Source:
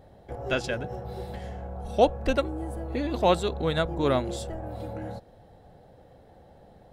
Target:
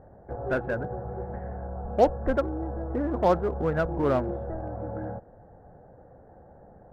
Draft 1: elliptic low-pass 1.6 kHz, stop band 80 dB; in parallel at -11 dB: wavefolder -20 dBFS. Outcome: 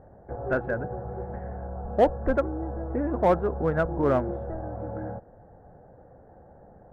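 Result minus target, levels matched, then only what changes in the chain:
wavefolder: distortion -7 dB
change: wavefolder -26 dBFS

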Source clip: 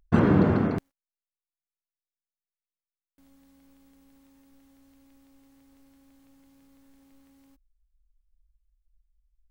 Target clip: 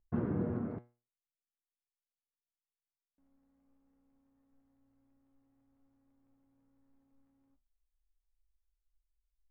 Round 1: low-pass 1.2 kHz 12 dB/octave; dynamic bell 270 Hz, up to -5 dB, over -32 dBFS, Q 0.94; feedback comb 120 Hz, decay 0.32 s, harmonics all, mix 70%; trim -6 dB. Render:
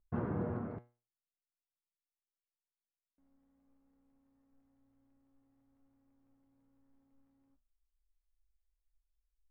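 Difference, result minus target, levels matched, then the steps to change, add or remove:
1 kHz band +5.5 dB
change: dynamic bell 910 Hz, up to -5 dB, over -32 dBFS, Q 0.94

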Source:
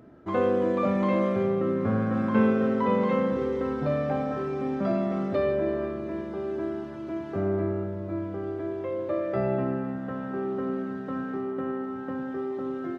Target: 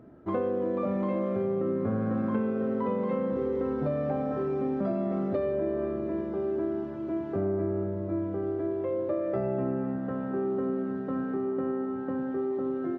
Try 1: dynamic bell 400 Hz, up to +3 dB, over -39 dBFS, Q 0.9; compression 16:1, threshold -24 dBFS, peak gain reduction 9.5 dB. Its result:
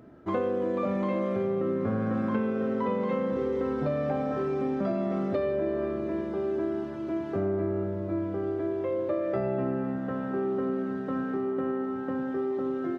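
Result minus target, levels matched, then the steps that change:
4 kHz band +7.5 dB
add after compression: treble shelf 2 kHz -11 dB

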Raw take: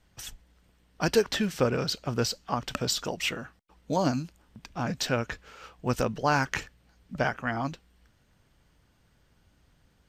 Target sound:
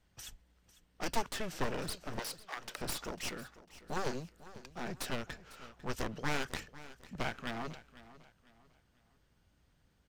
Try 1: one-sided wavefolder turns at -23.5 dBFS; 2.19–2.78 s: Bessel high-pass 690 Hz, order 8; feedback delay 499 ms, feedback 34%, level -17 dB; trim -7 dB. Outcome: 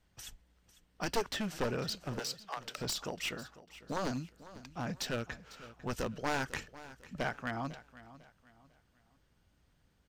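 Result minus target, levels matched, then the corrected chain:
one-sided wavefolder: distortion -13 dB
one-sided wavefolder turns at -33.5 dBFS; 2.19–2.78 s: Bessel high-pass 690 Hz, order 8; feedback delay 499 ms, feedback 34%, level -17 dB; trim -7 dB

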